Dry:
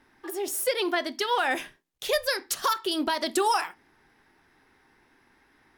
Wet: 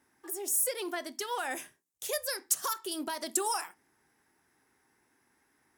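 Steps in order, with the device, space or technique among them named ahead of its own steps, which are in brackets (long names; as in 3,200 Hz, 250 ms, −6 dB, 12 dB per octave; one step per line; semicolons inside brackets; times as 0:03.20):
budget condenser microphone (high-pass filter 72 Hz; high shelf with overshoot 5,500 Hz +10.5 dB, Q 1.5)
level −9 dB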